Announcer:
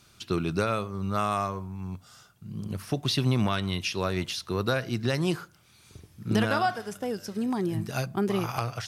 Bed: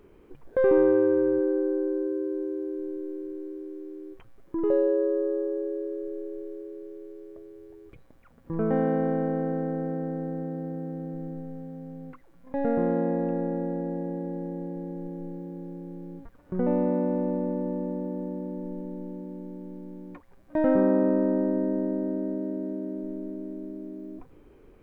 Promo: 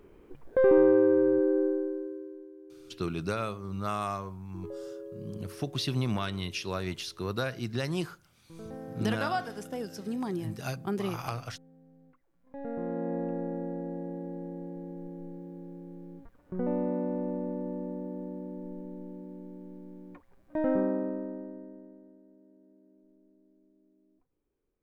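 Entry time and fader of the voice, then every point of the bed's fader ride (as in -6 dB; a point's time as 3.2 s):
2.70 s, -5.0 dB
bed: 1.64 s -0.5 dB
2.53 s -18 dB
12.21 s -18 dB
13.16 s -5.5 dB
20.77 s -5.5 dB
22.23 s -28.5 dB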